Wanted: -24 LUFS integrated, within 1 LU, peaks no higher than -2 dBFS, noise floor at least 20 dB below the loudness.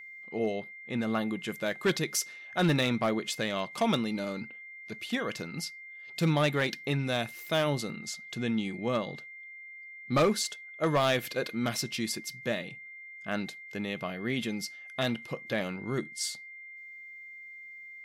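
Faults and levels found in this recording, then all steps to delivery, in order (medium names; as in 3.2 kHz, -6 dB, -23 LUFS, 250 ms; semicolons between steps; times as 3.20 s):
clipped samples 0.5%; clipping level -19.5 dBFS; steady tone 2.1 kHz; tone level -44 dBFS; loudness -31.5 LUFS; peak level -19.5 dBFS; loudness target -24.0 LUFS
-> clip repair -19.5 dBFS; band-stop 2.1 kHz, Q 30; trim +7.5 dB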